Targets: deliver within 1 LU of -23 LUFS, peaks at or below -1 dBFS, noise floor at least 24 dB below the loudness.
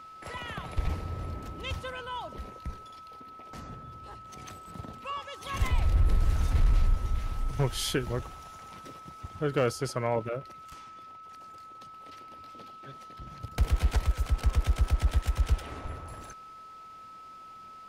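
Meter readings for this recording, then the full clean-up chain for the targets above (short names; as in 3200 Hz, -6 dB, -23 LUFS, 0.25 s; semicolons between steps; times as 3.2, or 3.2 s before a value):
clipped 0.5%; flat tops at -17.0 dBFS; steady tone 1300 Hz; tone level -45 dBFS; loudness -31.5 LUFS; peak -17.0 dBFS; loudness target -23.0 LUFS
-> clip repair -17 dBFS; notch 1300 Hz, Q 30; gain +8.5 dB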